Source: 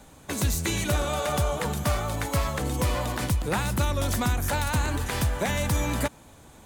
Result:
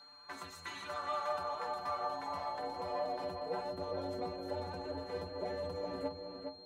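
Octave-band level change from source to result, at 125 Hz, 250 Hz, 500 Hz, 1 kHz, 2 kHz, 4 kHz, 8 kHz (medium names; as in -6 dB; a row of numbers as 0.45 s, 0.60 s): -25.5 dB, -16.0 dB, -7.5 dB, -7.0 dB, -17.0 dB, -14.0 dB, under -25 dB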